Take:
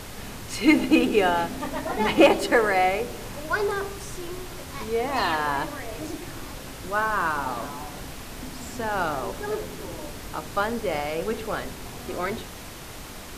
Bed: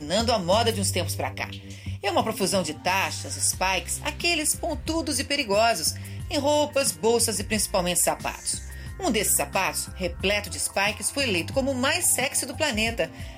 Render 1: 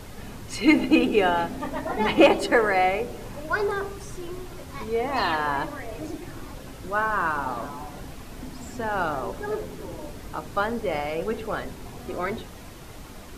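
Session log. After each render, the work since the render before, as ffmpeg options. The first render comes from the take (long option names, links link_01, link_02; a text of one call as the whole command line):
ffmpeg -i in.wav -af "afftdn=noise_reduction=7:noise_floor=-39" out.wav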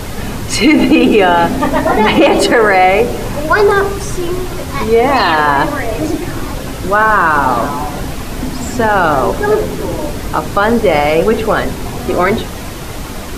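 ffmpeg -i in.wav -af "acontrast=38,alimiter=level_in=12.5dB:limit=-1dB:release=50:level=0:latency=1" out.wav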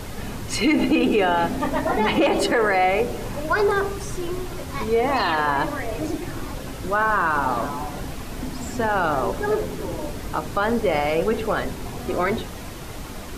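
ffmpeg -i in.wav -af "volume=-10.5dB" out.wav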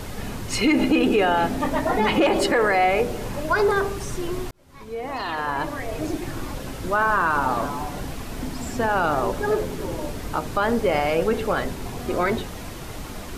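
ffmpeg -i in.wav -filter_complex "[0:a]asplit=2[link_01][link_02];[link_01]atrim=end=4.51,asetpts=PTS-STARTPTS,afade=type=out:start_time=4.506:duration=0.004:curve=hsin[link_03];[link_02]atrim=start=4.51,asetpts=PTS-STARTPTS,afade=type=in:duration=1.67[link_04];[link_03][link_04]concat=n=2:v=0:a=1" out.wav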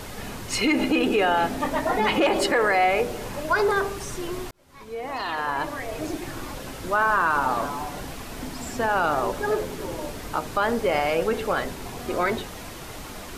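ffmpeg -i in.wav -af "lowshelf=frequency=320:gain=-6.5" out.wav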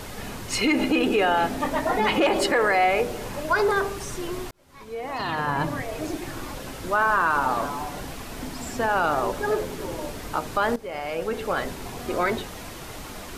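ffmpeg -i in.wav -filter_complex "[0:a]asettb=1/sr,asplit=3[link_01][link_02][link_03];[link_01]atrim=end=5.194[link_04];[link_02]atrim=start=5.19:end=5.82,asetpts=PTS-STARTPTS,afade=type=in:duration=0.004:curve=qsin,afade=type=out:start_time=0.626:duration=0.004:curve=qsin,equalizer=frequency=150:width=1:gain=14.5[link_05];[link_03]atrim=start=5.816[link_06];[link_04][link_05]acrossfade=duration=0.004:curve1=hsin:curve2=qsin[link_07];[link_07][link_06]acrossfade=duration=0.004:curve1=qsin:curve2=hsin,asplit=2[link_08][link_09];[link_08]atrim=end=10.76,asetpts=PTS-STARTPTS,afade=type=out:start_time=10.756:duration=0.004:curve=hsin:silence=0.158489[link_10];[link_09]atrim=start=10.76,asetpts=PTS-STARTPTS,afade=type=in:duration=0.92:silence=0.158489[link_11];[link_10][link_11]concat=n=2:v=0:a=1" out.wav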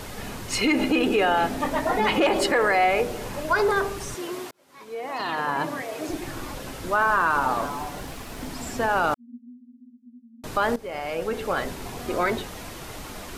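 ffmpeg -i in.wav -filter_complex "[0:a]asettb=1/sr,asplit=3[link_01][link_02][link_03];[link_01]atrim=end=4.144[link_04];[link_02]atrim=start=4.14:end=6.09,asetpts=PTS-STARTPTS,afade=type=in:duration=0.004:curve=qsin,afade=type=out:start_time=1.946:duration=0.004:curve=qsin,highpass=240[link_05];[link_03]atrim=start=6.086[link_06];[link_04][link_05]acrossfade=duration=0.004:curve1=hsin:curve2=qsin[link_07];[link_07][link_06]acrossfade=duration=0.004:curve1=qsin:curve2=hsin,asettb=1/sr,asplit=3[link_08][link_09][link_10];[link_08]atrim=end=7.534[link_11];[link_09]atrim=start=7.53:end=8.49,asetpts=PTS-STARTPTS,afade=type=in:duration=0.004:curve=qsin,afade=type=out:start_time=0.956:duration=0.004:curve=qsin,aeval=exprs='sgn(val(0))*max(abs(val(0))-0.00266,0)':channel_layout=same[link_12];[link_10]atrim=start=8.486[link_13];[link_11][link_12]acrossfade=duration=0.004:curve1=hsin:curve2=qsin[link_14];[link_14][link_13]acrossfade=duration=0.004:curve1=qsin:curve2=hsin,asettb=1/sr,asplit=3[link_15][link_16][link_17];[link_15]atrim=end=9.144[link_18];[link_16]atrim=start=9.14:end=10.44,asetpts=PTS-STARTPTS,afade=type=in:duration=0.004:curve=qsin,afade=type=out:start_time=1.296:duration=0.004:curve=qsin,asuperpass=centerf=240:order=20:qfactor=7.8[link_19];[link_17]atrim=start=10.436[link_20];[link_18][link_19]acrossfade=duration=0.004:curve1=hsin:curve2=qsin[link_21];[link_21][link_20]acrossfade=duration=0.004:curve1=qsin:curve2=hsin" out.wav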